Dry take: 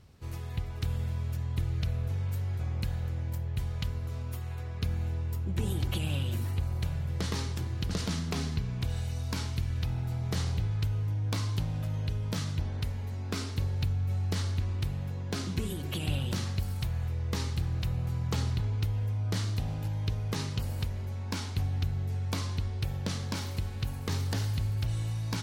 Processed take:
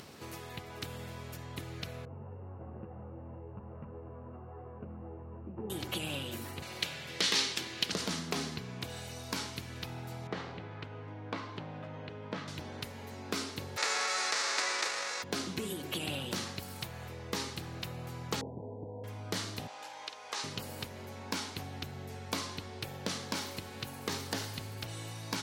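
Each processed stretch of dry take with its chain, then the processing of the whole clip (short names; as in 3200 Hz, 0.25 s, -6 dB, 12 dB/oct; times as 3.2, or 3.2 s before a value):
2.05–5.7 sample sorter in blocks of 16 samples + LPF 1100 Hz 24 dB/oct + ensemble effect
6.62–7.92 weighting filter D + hard clip -18 dBFS
10.27–12.48 LPF 2200 Hz + low shelf 84 Hz -11.5 dB
13.76–15.22 spectral whitening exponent 0.3 + speaker cabinet 490–6700 Hz, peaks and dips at 710 Hz -3 dB, 1300 Hz +3 dB, 1900 Hz +3 dB, 3100 Hz -8 dB
18.41–19.04 rippled Chebyshev low-pass 980 Hz, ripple 6 dB + bell 490 Hz +12.5 dB 0.51 oct
19.67–20.44 Chebyshev band-pass 790–7500 Hz + doubler 49 ms -10.5 dB
whole clip: HPF 260 Hz 12 dB/oct; upward compressor, threshold -41 dBFS; gain +1.5 dB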